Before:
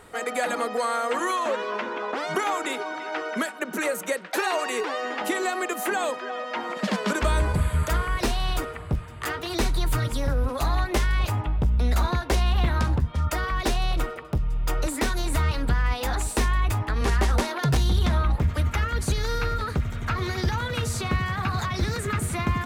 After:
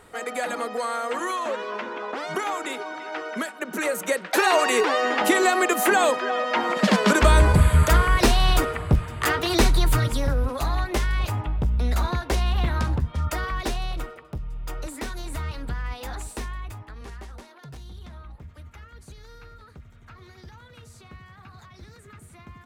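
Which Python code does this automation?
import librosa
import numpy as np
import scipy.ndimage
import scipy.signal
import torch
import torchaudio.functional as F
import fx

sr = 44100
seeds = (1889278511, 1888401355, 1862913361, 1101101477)

y = fx.gain(x, sr, db=fx.line((3.55, -2.0), (4.58, 7.0), (9.5, 7.0), (10.65, -1.0), (13.44, -1.0), (14.22, -7.5), (16.21, -7.5), (17.37, -20.0)))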